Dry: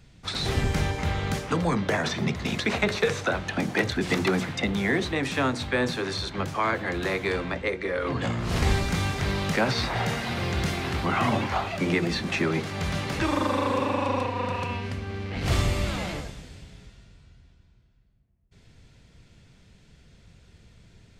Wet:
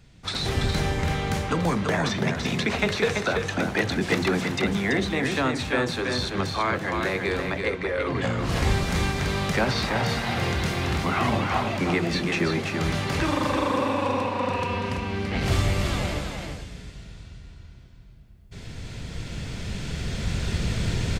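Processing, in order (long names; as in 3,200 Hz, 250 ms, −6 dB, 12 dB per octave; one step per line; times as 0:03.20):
camcorder AGC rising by 5.7 dB per second
on a send: single-tap delay 334 ms −5 dB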